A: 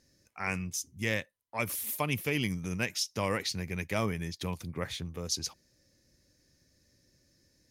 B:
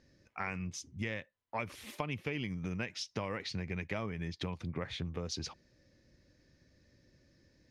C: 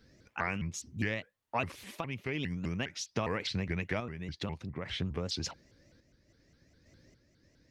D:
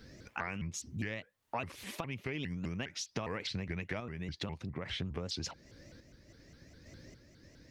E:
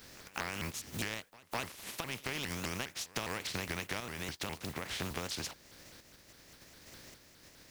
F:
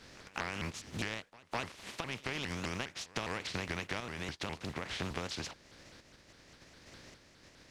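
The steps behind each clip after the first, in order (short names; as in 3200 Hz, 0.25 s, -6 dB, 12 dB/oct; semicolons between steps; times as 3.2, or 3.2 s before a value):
LPF 3300 Hz 12 dB/oct; compressor 10:1, threshold -37 dBFS, peak gain reduction 12 dB; gain +3.5 dB
random-step tremolo; shaped vibrato saw up 4.9 Hz, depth 250 cents; gain +5 dB
compressor 2.5:1, threshold -49 dBFS, peak gain reduction 14.5 dB; gain +8 dB
spectral contrast lowered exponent 0.4; reverse echo 0.205 s -21 dB
air absorption 74 m; gain +1 dB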